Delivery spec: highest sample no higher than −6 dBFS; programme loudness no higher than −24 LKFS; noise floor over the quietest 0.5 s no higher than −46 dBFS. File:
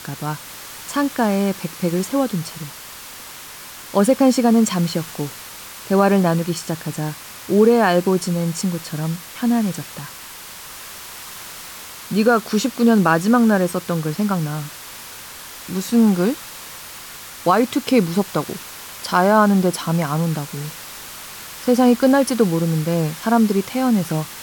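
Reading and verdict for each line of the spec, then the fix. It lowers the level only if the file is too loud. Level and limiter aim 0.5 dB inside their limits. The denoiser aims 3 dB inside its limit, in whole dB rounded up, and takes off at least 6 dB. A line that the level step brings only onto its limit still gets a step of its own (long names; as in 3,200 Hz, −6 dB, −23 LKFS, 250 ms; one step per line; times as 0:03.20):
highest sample −3.5 dBFS: out of spec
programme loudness −19.0 LKFS: out of spec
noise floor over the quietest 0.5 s −37 dBFS: out of spec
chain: broadband denoise 7 dB, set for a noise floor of −37 dBFS
level −5.5 dB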